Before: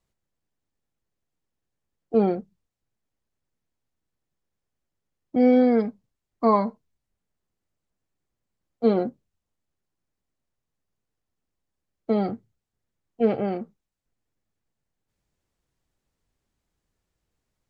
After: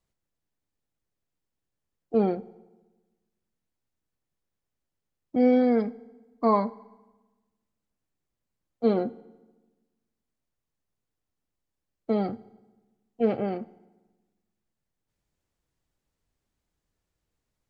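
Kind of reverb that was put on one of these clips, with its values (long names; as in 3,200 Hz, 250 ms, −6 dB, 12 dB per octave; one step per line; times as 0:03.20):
feedback delay network reverb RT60 1.2 s, low-frequency decay 1.25×, high-frequency decay 0.8×, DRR 18.5 dB
level −2.5 dB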